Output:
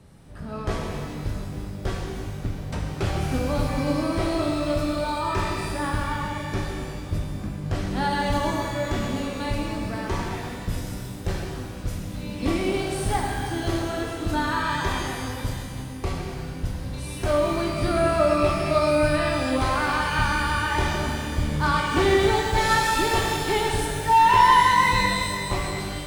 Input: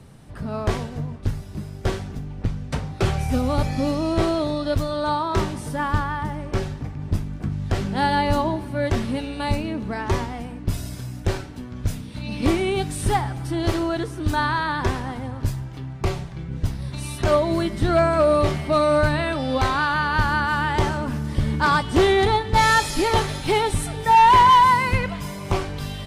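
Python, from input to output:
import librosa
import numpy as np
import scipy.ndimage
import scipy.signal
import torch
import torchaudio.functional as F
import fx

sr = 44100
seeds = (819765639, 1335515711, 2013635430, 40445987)

y = fx.rev_shimmer(x, sr, seeds[0], rt60_s=2.1, semitones=12, shimmer_db=-8, drr_db=-1.0)
y = y * 10.0 ** (-6.0 / 20.0)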